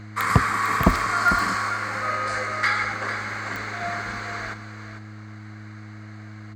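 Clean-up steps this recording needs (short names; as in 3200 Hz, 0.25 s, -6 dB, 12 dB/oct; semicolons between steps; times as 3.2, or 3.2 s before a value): de-click; de-hum 106.1 Hz, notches 3; inverse comb 0.449 s -10.5 dB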